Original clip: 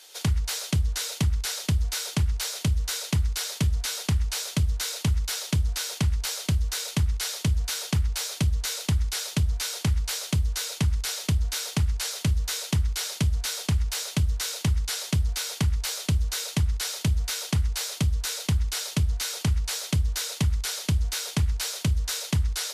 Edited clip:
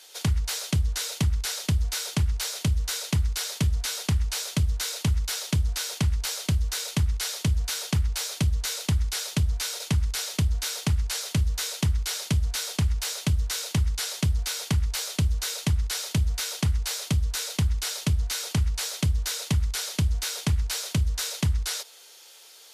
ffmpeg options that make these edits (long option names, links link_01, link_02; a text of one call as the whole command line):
ffmpeg -i in.wav -filter_complex "[0:a]asplit=2[link_01][link_02];[link_01]atrim=end=9.802[link_03];[link_02]atrim=start=10.698[link_04];[link_03][link_04]acrossfade=duration=0.004:curve1=hsin:curve2=hsin" out.wav